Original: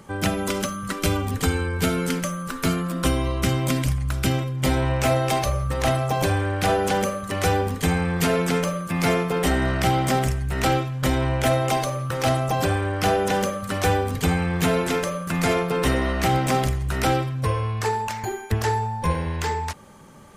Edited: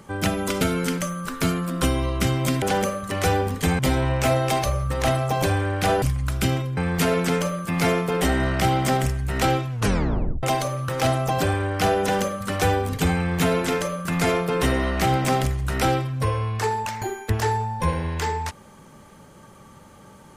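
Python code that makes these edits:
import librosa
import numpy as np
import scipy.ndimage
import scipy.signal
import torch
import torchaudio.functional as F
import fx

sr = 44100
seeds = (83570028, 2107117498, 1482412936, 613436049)

y = fx.edit(x, sr, fx.cut(start_s=0.61, length_s=1.22),
    fx.swap(start_s=3.84, length_s=0.75, other_s=6.82, other_length_s=1.17),
    fx.tape_stop(start_s=10.93, length_s=0.72), tone=tone)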